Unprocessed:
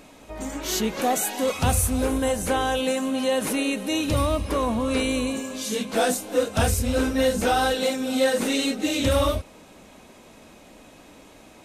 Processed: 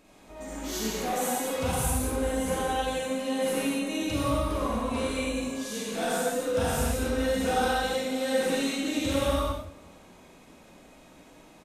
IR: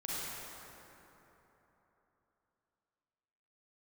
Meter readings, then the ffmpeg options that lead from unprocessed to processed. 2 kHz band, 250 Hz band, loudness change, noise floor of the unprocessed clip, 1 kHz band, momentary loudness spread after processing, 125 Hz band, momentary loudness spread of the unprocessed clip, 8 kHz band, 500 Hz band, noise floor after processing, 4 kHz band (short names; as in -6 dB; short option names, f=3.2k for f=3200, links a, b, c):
-4.5 dB, -5.0 dB, -4.5 dB, -49 dBFS, -4.0 dB, 6 LU, -5.5 dB, 5 LU, -5.0 dB, -4.5 dB, -53 dBFS, -5.5 dB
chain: -filter_complex "[0:a]asplit=2[a][b];[b]adelay=182,lowpass=f=2k:p=1,volume=-20.5dB,asplit=2[c][d];[d]adelay=182,lowpass=f=2k:p=1,volume=0.52,asplit=2[e][f];[f]adelay=182,lowpass=f=2k:p=1,volume=0.52,asplit=2[g][h];[h]adelay=182,lowpass=f=2k:p=1,volume=0.52[i];[a][c][e][g][i]amix=inputs=5:normalize=0[j];[1:a]atrim=start_sample=2205,afade=t=out:st=0.35:d=0.01,atrim=end_sample=15876[k];[j][k]afir=irnorm=-1:irlink=0,volume=-6.5dB"